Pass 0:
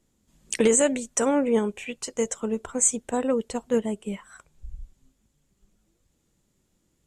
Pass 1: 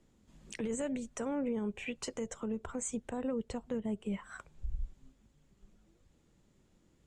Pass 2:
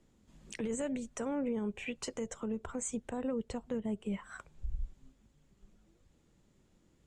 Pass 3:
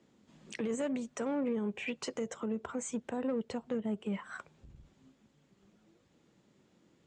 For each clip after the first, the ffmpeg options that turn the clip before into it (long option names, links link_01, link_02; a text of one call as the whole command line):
ffmpeg -i in.wav -filter_complex "[0:a]aemphasis=mode=reproduction:type=50fm,acrossover=split=160[link_01][link_02];[link_02]acompressor=threshold=-40dB:ratio=2.5[link_03];[link_01][link_03]amix=inputs=2:normalize=0,alimiter=level_in=6dB:limit=-24dB:level=0:latency=1:release=107,volume=-6dB,volume=2.5dB" out.wav
ffmpeg -i in.wav -af anull out.wav
ffmpeg -i in.wav -filter_complex "[0:a]asplit=2[link_01][link_02];[link_02]asoftclip=type=tanh:threshold=-39.5dB,volume=-4dB[link_03];[link_01][link_03]amix=inputs=2:normalize=0,highpass=160,lowpass=6000" out.wav